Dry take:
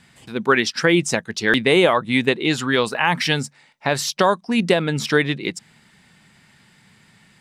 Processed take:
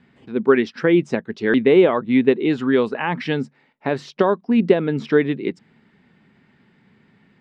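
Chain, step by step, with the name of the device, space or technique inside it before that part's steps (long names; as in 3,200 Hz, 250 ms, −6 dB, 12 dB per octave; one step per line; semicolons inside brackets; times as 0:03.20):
inside a cardboard box (low-pass filter 2,600 Hz 12 dB per octave; hollow resonant body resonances 260/390 Hz, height 10 dB, ringing for 25 ms)
level −5.5 dB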